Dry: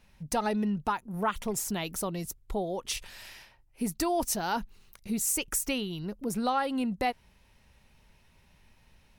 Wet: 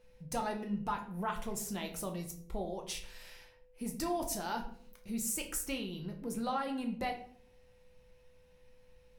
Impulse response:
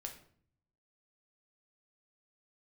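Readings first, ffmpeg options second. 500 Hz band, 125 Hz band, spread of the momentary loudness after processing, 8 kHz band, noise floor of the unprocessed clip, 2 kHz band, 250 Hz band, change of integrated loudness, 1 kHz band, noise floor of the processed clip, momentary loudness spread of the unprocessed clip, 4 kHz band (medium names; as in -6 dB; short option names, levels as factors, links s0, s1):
-6.5 dB, -5.5 dB, 10 LU, -7.0 dB, -63 dBFS, -7.0 dB, -6.5 dB, -6.5 dB, -6.5 dB, -63 dBFS, 9 LU, -7.0 dB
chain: -filter_complex "[0:a]aeval=exprs='val(0)+0.00178*sin(2*PI*500*n/s)':c=same[s0];[1:a]atrim=start_sample=2205,asetrate=48510,aresample=44100[s1];[s0][s1]afir=irnorm=-1:irlink=0,volume=0.75"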